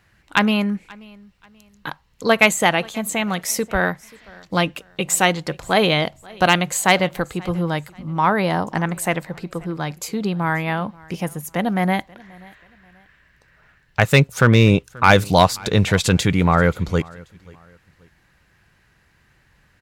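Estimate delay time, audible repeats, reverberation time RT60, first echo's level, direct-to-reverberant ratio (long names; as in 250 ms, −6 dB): 533 ms, 2, no reverb audible, −24.0 dB, no reverb audible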